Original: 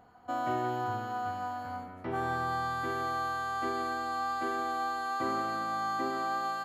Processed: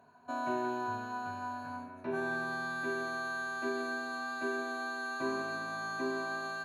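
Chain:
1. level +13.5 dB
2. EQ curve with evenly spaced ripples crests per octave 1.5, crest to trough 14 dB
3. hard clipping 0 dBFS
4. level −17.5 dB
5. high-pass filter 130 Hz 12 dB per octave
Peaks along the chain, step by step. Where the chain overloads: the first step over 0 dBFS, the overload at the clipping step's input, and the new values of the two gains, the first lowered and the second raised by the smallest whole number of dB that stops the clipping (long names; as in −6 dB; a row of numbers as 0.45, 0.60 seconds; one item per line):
−7.5, −4.5, −4.5, −22.0, −22.0 dBFS
no step passes full scale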